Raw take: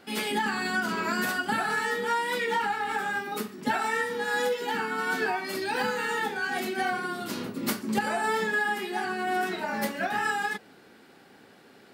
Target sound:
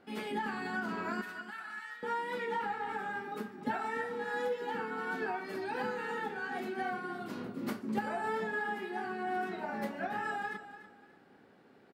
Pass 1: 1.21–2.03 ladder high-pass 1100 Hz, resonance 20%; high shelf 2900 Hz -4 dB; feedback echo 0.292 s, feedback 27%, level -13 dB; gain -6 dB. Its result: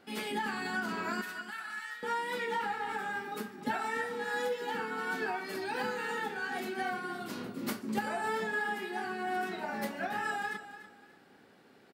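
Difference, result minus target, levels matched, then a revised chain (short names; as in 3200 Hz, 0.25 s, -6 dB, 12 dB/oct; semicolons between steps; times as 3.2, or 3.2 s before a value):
8000 Hz band +8.0 dB
1.21–2.03 ladder high-pass 1100 Hz, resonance 20%; high shelf 2900 Hz -15 dB; feedback echo 0.292 s, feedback 27%, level -13 dB; gain -6 dB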